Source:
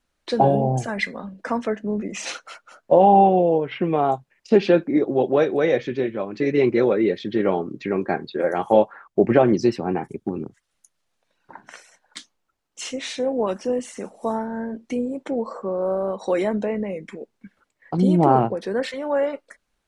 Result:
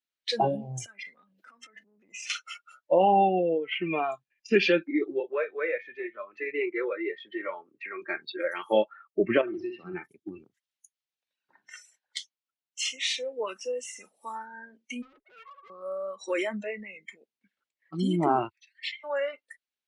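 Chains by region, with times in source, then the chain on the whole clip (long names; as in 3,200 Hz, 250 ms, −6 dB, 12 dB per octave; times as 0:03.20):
0:00.86–0:02.30: downward compressor, threshold −38 dBFS + transient designer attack −6 dB, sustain +10 dB
0:03.86–0:04.70: low-shelf EQ 80 Hz +10 dB + hollow resonant body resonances 1,700/2,400 Hz, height 11 dB, ringing for 35 ms
0:05.20–0:08.02: three-way crossover with the lows and the highs turned down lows −14 dB, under 390 Hz, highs −12 dB, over 2,100 Hz + multiband upward and downward compressor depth 40%
0:09.41–0:09.94: downward compressor 3 to 1, threshold −21 dBFS + high-frequency loss of the air 360 metres + flutter between parallel walls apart 10.9 metres, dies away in 0.52 s
0:15.02–0:15.70: three sine waves on the formant tracks + tube saturation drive 35 dB, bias 0.55
0:18.49–0:19.04: Chebyshev high-pass filter 2,000 Hz, order 5 + high-frequency loss of the air 110 metres
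whole clip: meter weighting curve D; noise reduction from a noise print of the clip's start 18 dB; level −6.5 dB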